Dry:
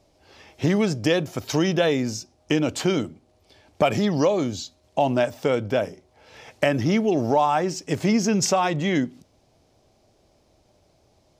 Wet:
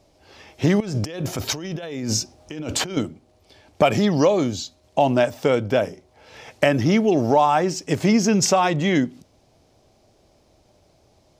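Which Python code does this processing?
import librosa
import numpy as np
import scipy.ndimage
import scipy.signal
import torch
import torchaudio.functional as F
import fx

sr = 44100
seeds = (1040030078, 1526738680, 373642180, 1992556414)

y = fx.over_compress(x, sr, threshold_db=-31.0, ratio=-1.0, at=(0.8, 2.97))
y = F.gain(torch.from_numpy(y), 3.0).numpy()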